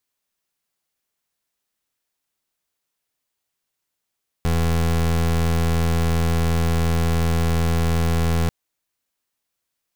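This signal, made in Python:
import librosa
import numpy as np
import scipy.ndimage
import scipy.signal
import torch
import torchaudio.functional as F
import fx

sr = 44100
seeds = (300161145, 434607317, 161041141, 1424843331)

y = fx.pulse(sr, length_s=4.04, hz=82.8, level_db=-19.0, duty_pct=27)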